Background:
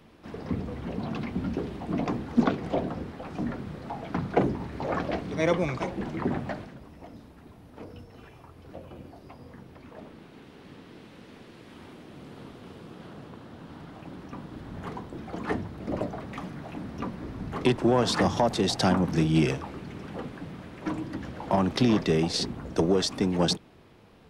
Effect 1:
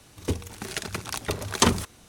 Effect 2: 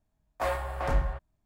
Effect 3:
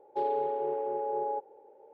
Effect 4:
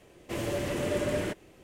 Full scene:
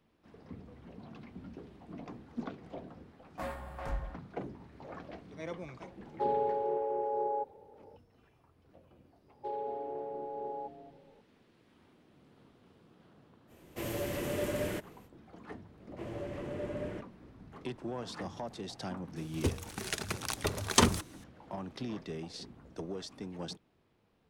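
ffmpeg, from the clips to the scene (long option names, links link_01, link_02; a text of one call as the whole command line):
ffmpeg -i bed.wav -i cue0.wav -i cue1.wav -i cue2.wav -i cue3.wav -filter_complex "[3:a]asplit=2[link_01][link_02];[4:a]asplit=2[link_03][link_04];[0:a]volume=-17dB[link_05];[link_02]asplit=4[link_06][link_07][link_08][link_09];[link_07]adelay=225,afreqshift=-140,volume=-13dB[link_10];[link_08]adelay=450,afreqshift=-280,volume=-22.9dB[link_11];[link_09]adelay=675,afreqshift=-420,volume=-32.8dB[link_12];[link_06][link_10][link_11][link_12]amix=inputs=4:normalize=0[link_13];[link_03]equalizer=frequency=13000:width=2.4:gain=13.5[link_14];[link_04]lowpass=frequency=1200:poles=1[link_15];[2:a]atrim=end=1.45,asetpts=PTS-STARTPTS,volume=-10.5dB,afade=type=in:duration=0.004:curve=hsin,afade=type=out:start_time=1.446:duration=0.004:curve=hsin,adelay=2980[link_16];[link_01]atrim=end=1.93,asetpts=PTS-STARTPTS,volume=-1dB,afade=type=in:duration=0.004:curve=hsin,afade=type=out:start_time=1.926:duration=0.004:curve=hsin,adelay=6040[link_17];[link_13]atrim=end=1.93,asetpts=PTS-STARTPTS,volume=-8dB,afade=type=in:duration=0.004:curve=hsin,afade=type=out:start_time=1.926:duration=0.004:curve=hsin,adelay=9280[link_18];[link_14]atrim=end=1.63,asetpts=PTS-STARTPTS,volume=-4.5dB,afade=type=in:duration=0.05,afade=type=out:start_time=1.58:duration=0.05,adelay=13470[link_19];[link_15]atrim=end=1.63,asetpts=PTS-STARTPTS,volume=-8dB,afade=type=in:duration=0.004:curve=hsin,afade=type=out:start_time=1.626:duration=0.004:curve=hsin,adelay=15680[link_20];[1:a]atrim=end=2.08,asetpts=PTS-STARTPTS,volume=-4dB,afade=type=in:duration=0.004:curve=hsin,afade=type=out:start_time=2.076:duration=0.004:curve=hsin,adelay=19160[link_21];[link_05][link_16][link_17][link_18][link_19][link_20][link_21]amix=inputs=7:normalize=0" out.wav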